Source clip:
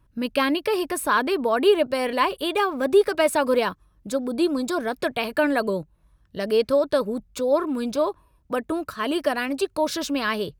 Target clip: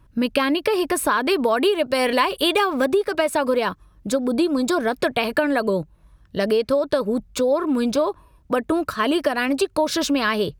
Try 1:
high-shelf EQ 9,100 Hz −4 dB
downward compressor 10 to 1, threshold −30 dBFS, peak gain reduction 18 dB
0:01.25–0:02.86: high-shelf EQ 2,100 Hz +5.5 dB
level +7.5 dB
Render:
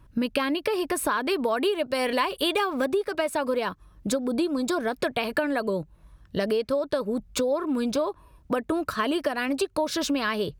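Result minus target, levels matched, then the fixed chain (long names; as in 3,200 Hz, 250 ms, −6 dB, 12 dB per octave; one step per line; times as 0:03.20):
downward compressor: peak gain reduction +6 dB
high-shelf EQ 9,100 Hz −4 dB
downward compressor 10 to 1, threshold −23.5 dBFS, peak gain reduction 12 dB
0:01.25–0:02.86: high-shelf EQ 2,100 Hz +5.5 dB
level +7.5 dB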